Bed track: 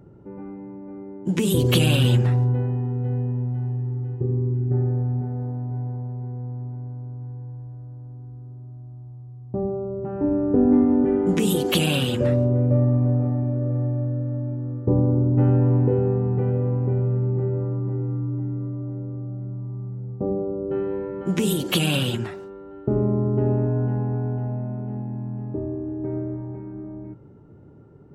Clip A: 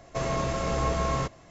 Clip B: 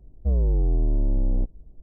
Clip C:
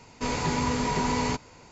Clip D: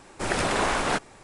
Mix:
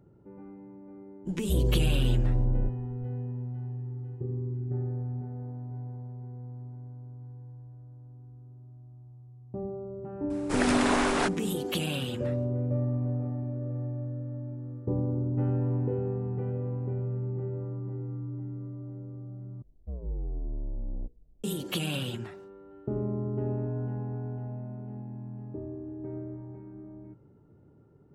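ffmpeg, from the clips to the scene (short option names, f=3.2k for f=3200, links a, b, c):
-filter_complex "[2:a]asplit=2[a][b];[0:a]volume=-10dB[c];[b]bandreject=f=60:t=h:w=6,bandreject=f=120:t=h:w=6,bandreject=f=180:t=h:w=6,bandreject=f=240:t=h:w=6,bandreject=f=300:t=h:w=6,bandreject=f=360:t=h:w=6,bandreject=f=420:t=h:w=6,bandreject=f=480:t=h:w=6[d];[c]asplit=2[e][f];[e]atrim=end=19.624[g];[d]atrim=end=1.82,asetpts=PTS-STARTPTS,volume=-12.5dB[h];[f]atrim=start=21.436[i];[a]atrim=end=1.82,asetpts=PTS-STARTPTS,volume=-5.5dB,afade=t=in:d=0.004:c=hsin,afade=t=out:st=1.816:d=0.004:c=hsin,adelay=1240[j];[4:a]atrim=end=1.23,asetpts=PTS-STARTPTS,volume=-2.5dB,afade=t=in:d=0.004:c=hsin,afade=t=out:st=1.226:d=0.004:c=hsin,adelay=10300[k];[g][h]acrossfade=d=0.004:c1=hsin:c2=hsin[l];[l][i]acrossfade=d=0.004:c1=hsin:c2=hsin[m];[m][j][k]amix=inputs=3:normalize=0"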